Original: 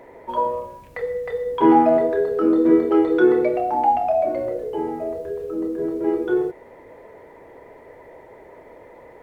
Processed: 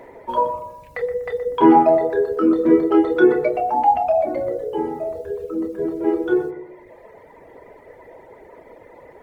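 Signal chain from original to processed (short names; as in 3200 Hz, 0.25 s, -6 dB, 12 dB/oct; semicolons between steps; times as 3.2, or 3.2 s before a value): reverb removal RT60 1.4 s; darkening echo 0.122 s, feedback 46%, low-pass 1300 Hz, level -9 dB; gain +3 dB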